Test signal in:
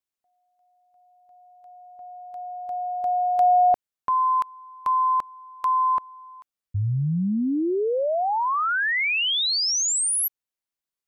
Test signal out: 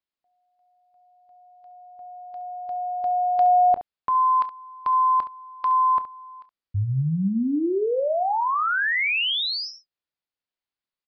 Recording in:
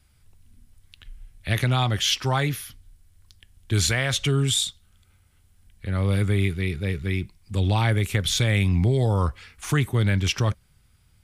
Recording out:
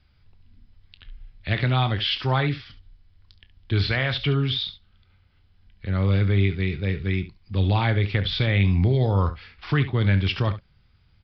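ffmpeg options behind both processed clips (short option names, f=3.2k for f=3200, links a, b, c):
-filter_complex "[0:a]aecho=1:1:21|31|69:0.141|0.15|0.211,aresample=11025,aresample=44100,acrossover=split=4300[a][b];[b]acompressor=threshold=-42dB:ratio=4:attack=1:release=60[c];[a][c]amix=inputs=2:normalize=0"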